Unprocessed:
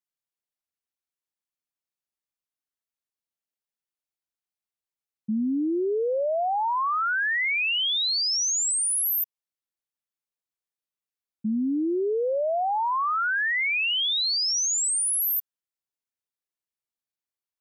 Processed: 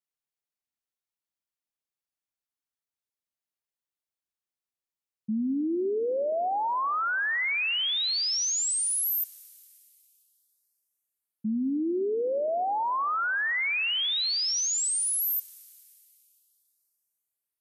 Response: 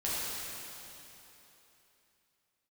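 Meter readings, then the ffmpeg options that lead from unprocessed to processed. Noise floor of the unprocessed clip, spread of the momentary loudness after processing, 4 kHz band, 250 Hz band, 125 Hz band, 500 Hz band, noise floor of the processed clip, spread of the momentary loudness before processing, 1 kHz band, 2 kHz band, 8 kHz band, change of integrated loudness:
under -85 dBFS, 5 LU, -2.5 dB, -2.5 dB, n/a, -2.5 dB, under -85 dBFS, 5 LU, -2.5 dB, -2.5 dB, -2.5 dB, -2.5 dB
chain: -filter_complex "[0:a]asplit=2[a][b];[1:a]atrim=start_sample=2205,lowshelf=f=260:g=5[c];[b][c]afir=irnorm=-1:irlink=0,volume=-25.5dB[d];[a][d]amix=inputs=2:normalize=0,volume=-3dB"

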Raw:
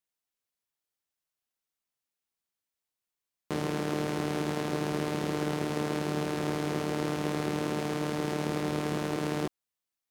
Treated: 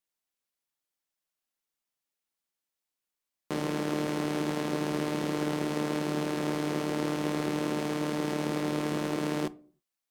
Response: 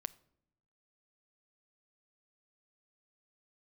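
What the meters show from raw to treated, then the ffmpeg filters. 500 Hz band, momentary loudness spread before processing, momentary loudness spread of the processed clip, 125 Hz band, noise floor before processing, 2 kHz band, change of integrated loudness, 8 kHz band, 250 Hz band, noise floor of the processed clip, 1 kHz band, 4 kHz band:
0.0 dB, 1 LU, 1 LU, -2.0 dB, under -85 dBFS, 0.0 dB, +0.5 dB, +0.5 dB, +1.5 dB, under -85 dBFS, -0.5 dB, +0.5 dB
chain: -filter_complex "[0:a]equalizer=f=82:t=o:w=0.64:g=-12[a];[1:a]atrim=start_sample=2205,asetrate=83790,aresample=44100[b];[a][b]afir=irnorm=-1:irlink=0,volume=8.5dB"

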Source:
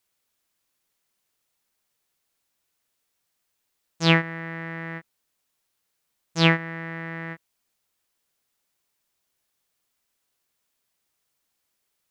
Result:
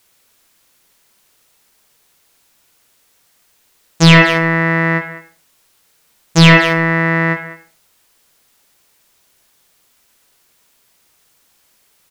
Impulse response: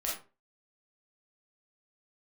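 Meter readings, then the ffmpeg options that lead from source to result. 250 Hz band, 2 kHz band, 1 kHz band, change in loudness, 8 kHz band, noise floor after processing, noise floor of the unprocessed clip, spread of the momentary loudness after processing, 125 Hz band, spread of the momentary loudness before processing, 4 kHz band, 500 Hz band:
+14.0 dB, +14.5 dB, +14.5 dB, +13.0 dB, n/a, -58 dBFS, -77 dBFS, 12 LU, +14.5 dB, 17 LU, +11.5 dB, +13.5 dB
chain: -filter_complex "[0:a]asplit=2[a][b];[b]adelay=200,highpass=300,lowpass=3.4k,asoftclip=type=hard:threshold=-11dB,volume=-15dB[c];[a][c]amix=inputs=2:normalize=0,asplit=2[d][e];[1:a]atrim=start_sample=2205,asetrate=33075,aresample=44100[f];[e][f]afir=irnorm=-1:irlink=0,volume=-13dB[g];[d][g]amix=inputs=2:normalize=0,apsyclip=19dB,volume=-1.5dB"

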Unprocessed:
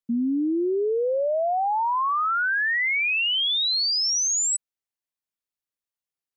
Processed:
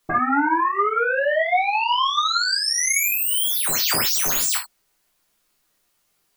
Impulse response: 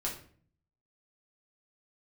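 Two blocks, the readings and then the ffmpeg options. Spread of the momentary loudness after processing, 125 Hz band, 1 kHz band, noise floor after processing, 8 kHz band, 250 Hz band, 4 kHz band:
3 LU, n/a, +4.5 dB, -69 dBFS, +3.0 dB, -2.5 dB, +0.5 dB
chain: -filter_complex "[0:a]acrossover=split=210|3000[a][b][c];[b]acompressor=threshold=-47dB:ratio=2[d];[a][d][c]amix=inputs=3:normalize=0,aeval=exprs='0.1*sin(PI/2*7.94*val(0)/0.1)':c=same[e];[1:a]atrim=start_sample=2205,atrim=end_sample=4410[f];[e][f]afir=irnorm=-1:irlink=0"

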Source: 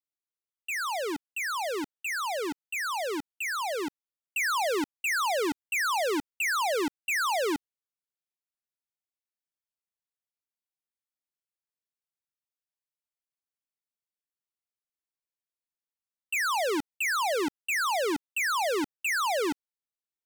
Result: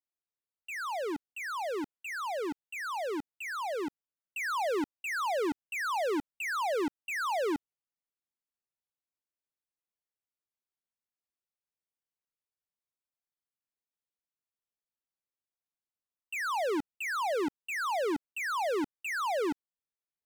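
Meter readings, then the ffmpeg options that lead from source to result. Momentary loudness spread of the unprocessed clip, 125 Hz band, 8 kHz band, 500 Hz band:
7 LU, n/a, -11.0 dB, -2.0 dB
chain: -af "highshelf=f=2.1k:g=-10,volume=-1.5dB"

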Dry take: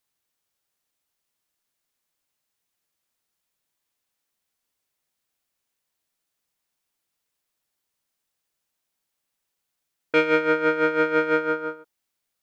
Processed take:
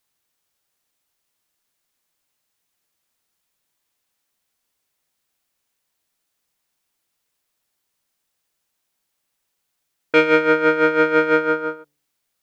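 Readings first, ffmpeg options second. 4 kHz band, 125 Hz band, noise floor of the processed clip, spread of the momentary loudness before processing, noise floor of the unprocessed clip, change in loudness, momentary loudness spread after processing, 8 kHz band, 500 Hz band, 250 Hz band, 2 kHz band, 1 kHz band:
+5.0 dB, +4.5 dB, -76 dBFS, 7 LU, -81 dBFS, +5.0 dB, 7 LU, n/a, +5.0 dB, +5.0 dB, +5.0 dB, +5.0 dB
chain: -af "bandreject=f=73.4:t=h:w=4,bandreject=f=146.8:t=h:w=4,bandreject=f=220.2:t=h:w=4,bandreject=f=293.6:t=h:w=4,bandreject=f=367:t=h:w=4,bandreject=f=440.4:t=h:w=4,bandreject=f=513.8:t=h:w=4,bandreject=f=587.2:t=h:w=4,bandreject=f=660.6:t=h:w=4,volume=5dB"

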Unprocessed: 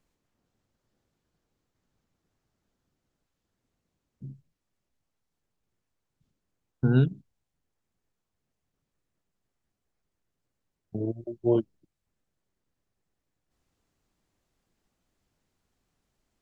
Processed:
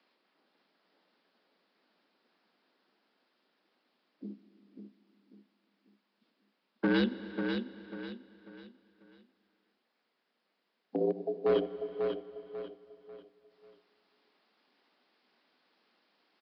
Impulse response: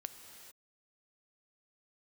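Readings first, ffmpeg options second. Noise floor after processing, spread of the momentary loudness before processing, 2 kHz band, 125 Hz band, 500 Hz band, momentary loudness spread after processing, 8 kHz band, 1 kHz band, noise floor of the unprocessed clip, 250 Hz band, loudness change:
-80 dBFS, 23 LU, +6.0 dB, -16.0 dB, +1.5 dB, 24 LU, n/a, +4.0 dB, -83 dBFS, -3.0 dB, -6.5 dB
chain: -filter_complex "[0:a]highpass=f=130:w=0.5412,highpass=f=130:w=1.3066,lowshelf=f=430:g=-11.5,acrossover=split=410|1700[a][b][c];[a]alimiter=level_in=6.5dB:limit=-24dB:level=0:latency=1:release=248,volume=-6.5dB[d];[b]acompressor=threshold=-48dB:ratio=6[e];[d][e][c]amix=inputs=3:normalize=0,aeval=exprs='0.0266*(abs(mod(val(0)/0.0266+3,4)-2)-1)':c=same,afreqshift=69,aecho=1:1:543|1086|1629|2172:0.501|0.175|0.0614|0.0215,asplit=2[f][g];[1:a]atrim=start_sample=2205,asetrate=33516,aresample=44100[h];[g][h]afir=irnorm=-1:irlink=0,volume=-1dB[i];[f][i]amix=inputs=2:normalize=0,aresample=11025,aresample=44100,volume=6dB"

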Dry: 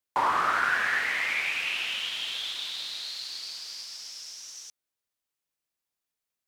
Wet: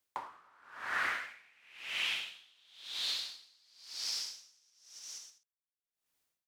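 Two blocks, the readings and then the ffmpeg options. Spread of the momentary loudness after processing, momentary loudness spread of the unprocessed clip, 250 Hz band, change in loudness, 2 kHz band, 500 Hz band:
21 LU, 15 LU, n/a, -9.0 dB, -11.0 dB, -14.0 dB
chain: -af "aecho=1:1:290|478.5|601|680.7|732.4:0.631|0.398|0.251|0.158|0.1,acompressor=threshold=-36dB:ratio=4,aeval=exprs='val(0)*pow(10,-33*(0.5-0.5*cos(2*PI*0.97*n/s))/20)':c=same,volume=4.5dB"

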